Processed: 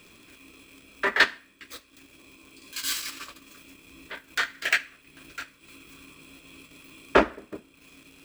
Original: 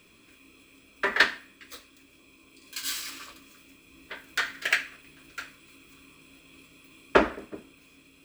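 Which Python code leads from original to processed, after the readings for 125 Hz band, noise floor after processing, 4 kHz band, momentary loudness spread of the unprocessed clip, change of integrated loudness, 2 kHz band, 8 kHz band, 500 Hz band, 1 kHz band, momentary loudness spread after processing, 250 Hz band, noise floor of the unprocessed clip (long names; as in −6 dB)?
can't be measured, −58 dBFS, +1.5 dB, 22 LU, +1.5 dB, +1.5 dB, +2.5 dB, +1.0 dB, +1.5 dB, 22 LU, +1.0 dB, −58 dBFS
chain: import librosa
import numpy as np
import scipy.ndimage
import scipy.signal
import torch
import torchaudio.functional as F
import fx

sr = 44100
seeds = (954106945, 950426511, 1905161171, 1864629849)

y = fx.dmg_crackle(x, sr, seeds[0], per_s=120.0, level_db=-46.0)
y = fx.transient(y, sr, attack_db=-5, sustain_db=-9)
y = y * 10.0 ** (5.0 / 20.0)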